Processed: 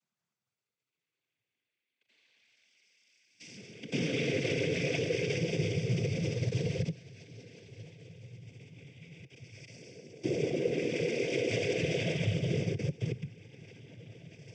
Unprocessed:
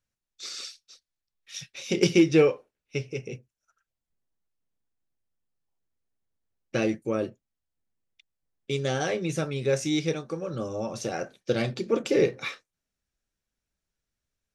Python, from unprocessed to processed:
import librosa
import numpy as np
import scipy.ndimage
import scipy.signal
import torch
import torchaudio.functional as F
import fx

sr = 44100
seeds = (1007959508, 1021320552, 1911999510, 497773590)

y = fx.paulstretch(x, sr, seeds[0], factor=35.0, window_s=0.05, from_s=2.83)
y = fx.level_steps(y, sr, step_db=19)
y = fx.noise_vocoder(y, sr, seeds[1], bands=16)
y = F.gain(torch.from_numpy(y), 7.5).numpy()